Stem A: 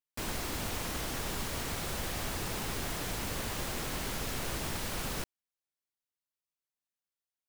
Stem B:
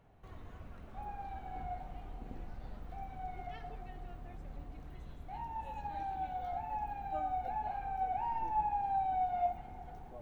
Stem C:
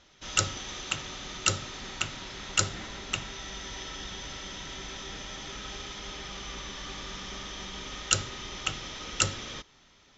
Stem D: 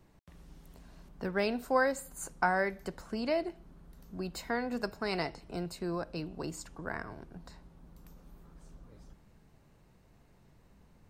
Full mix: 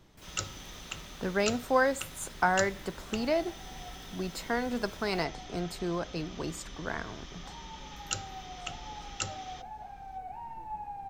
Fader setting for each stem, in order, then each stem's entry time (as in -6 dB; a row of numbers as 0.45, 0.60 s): -18.0, -6.5, -9.0, +2.5 dB; 0.00, 2.15, 0.00, 0.00 s